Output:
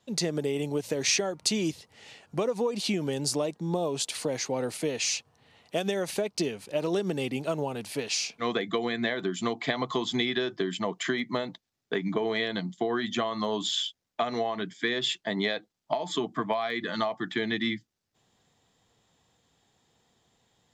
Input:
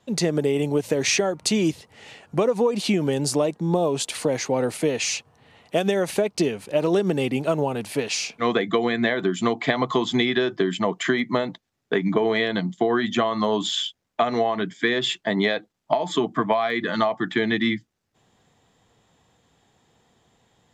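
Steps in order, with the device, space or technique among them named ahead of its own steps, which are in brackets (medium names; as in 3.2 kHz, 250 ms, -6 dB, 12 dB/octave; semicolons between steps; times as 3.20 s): presence and air boost (peaking EQ 4.8 kHz +5.5 dB 1.3 oct; treble shelf 11 kHz +5.5 dB); trim -7.5 dB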